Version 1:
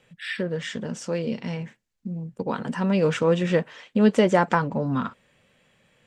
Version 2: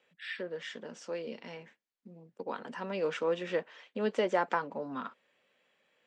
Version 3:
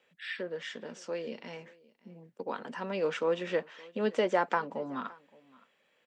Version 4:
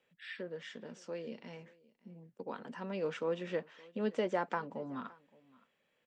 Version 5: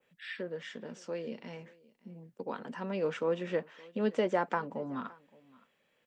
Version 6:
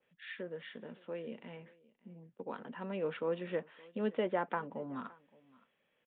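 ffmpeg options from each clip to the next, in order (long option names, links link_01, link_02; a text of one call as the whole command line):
ffmpeg -i in.wav -filter_complex "[0:a]acrossover=split=270 6500:gain=0.0631 1 0.158[link_01][link_02][link_03];[link_01][link_02][link_03]amix=inputs=3:normalize=0,volume=-8.5dB" out.wav
ffmpeg -i in.wav -af "aecho=1:1:568:0.0668,volume=1.5dB" out.wav
ffmpeg -i in.wav -af "lowshelf=frequency=200:gain=11.5,volume=-7.5dB" out.wav
ffmpeg -i in.wav -af "adynamicequalizer=threshold=0.001:dfrequency=4300:dqfactor=0.92:tfrequency=4300:tqfactor=0.92:attack=5:release=100:ratio=0.375:range=2:mode=cutabove:tftype=bell,volume=4dB" out.wav
ffmpeg -i in.wav -af "aresample=8000,aresample=44100,volume=-4dB" out.wav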